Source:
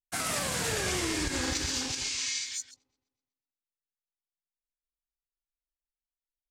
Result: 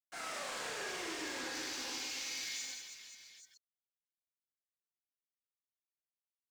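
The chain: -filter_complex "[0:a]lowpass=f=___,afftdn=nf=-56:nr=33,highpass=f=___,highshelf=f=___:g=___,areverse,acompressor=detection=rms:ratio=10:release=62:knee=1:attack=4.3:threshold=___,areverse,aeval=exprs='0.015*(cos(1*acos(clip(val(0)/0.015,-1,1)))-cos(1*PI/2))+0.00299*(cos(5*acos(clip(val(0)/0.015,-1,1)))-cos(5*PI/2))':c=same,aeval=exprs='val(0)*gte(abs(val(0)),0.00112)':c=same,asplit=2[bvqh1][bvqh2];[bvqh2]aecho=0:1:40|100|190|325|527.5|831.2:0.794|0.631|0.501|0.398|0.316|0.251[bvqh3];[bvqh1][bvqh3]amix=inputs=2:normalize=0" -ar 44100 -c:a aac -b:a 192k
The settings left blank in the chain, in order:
7.4k, 400, 4.4k, -5, -46dB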